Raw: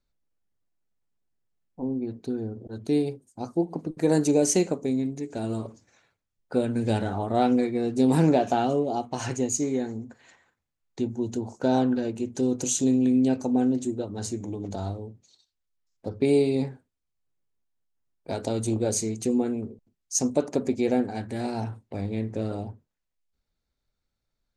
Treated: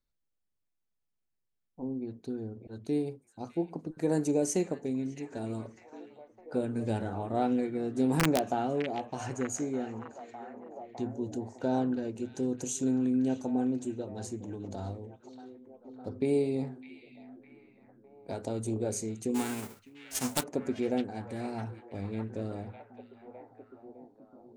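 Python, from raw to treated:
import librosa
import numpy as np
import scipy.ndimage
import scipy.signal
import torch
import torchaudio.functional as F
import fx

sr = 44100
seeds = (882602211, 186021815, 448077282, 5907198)

y = fx.envelope_flatten(x, sr, power=0.3, at=(19.34, 20.42), fade=0.02)
y = fx.dynamic_eq(y, sr, hz=4100.0, q=0.97, threshold_db=-48.0, ratio=4.0, max_db=-6)
y = (np.mod(10.0 ** (10.5 / 20.0) * y + 1.0, 2.0) - 1.0) / 10.0 ** (10.5 / 20.0)
y = fx.echo_stepped(y, sr, ms=607, hz=2500.0, octaves=-0.7, feedback_pct=70, wet_db=-6.5)
y = y * librosa.db_to_amplitude(-6.5)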